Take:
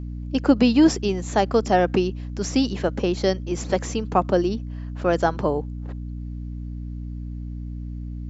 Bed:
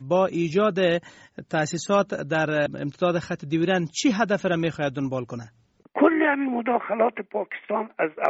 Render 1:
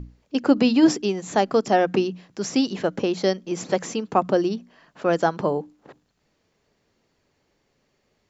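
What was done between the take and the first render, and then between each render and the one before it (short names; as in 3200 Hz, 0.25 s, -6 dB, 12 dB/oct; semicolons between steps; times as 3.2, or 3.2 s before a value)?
notches 60/120/180/240/300 Hz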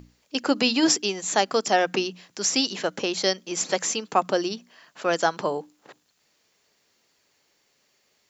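tilt +3.5 dB/oct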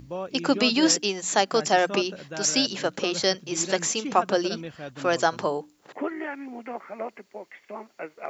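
add bed -12.5 dB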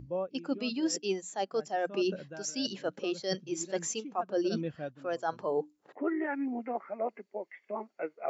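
reverse; compressor 16:1, threshold -31 dBFS, peak gain reduction 17.5 dB; reverse; spectral expander 1.5:1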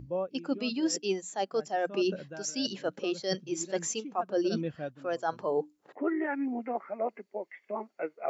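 gain +1.5 dB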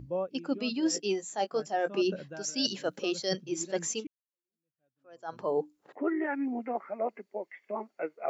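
0.84–2.01 doubler 19 ms -9.5 dB; 2.58–3.29 high shelf 4400 Hz +10 dB; 4.07–5.39 fade in exponential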